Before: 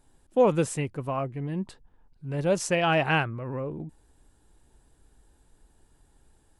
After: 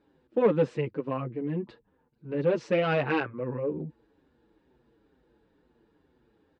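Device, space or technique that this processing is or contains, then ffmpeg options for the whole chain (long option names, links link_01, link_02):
barber-pole flanger into a guitar amplifier: -filter_complex "[0:a]asplit=2[link_01][link_02];[link_02]adelay=6.8,afreqshift=-2.2[link_03];[link_01][link_03]amix=inputs=2:normalize=1,asoftclip=type=tanh:threshold=-23dB,highpass=100,equalizer=frequency=100:width_type=q:width=4:gain=-7,equalizer=frequency=220:width_type=q:width=4:gain=4,equalizer=frequency=320:width_type=q:width=4:gain=6,equalizer=frequency=480:width_type=q:width=4:gain=9,equalizer=frequency=710:width_type=q:width=4:gain=-5,equalizer=frequency=3200:width_type=q:width=4:gain=-4,lowpass=frequency=3800:width=0.5412,lowpass=frequency=3800:width=1.3066,volume=2dB"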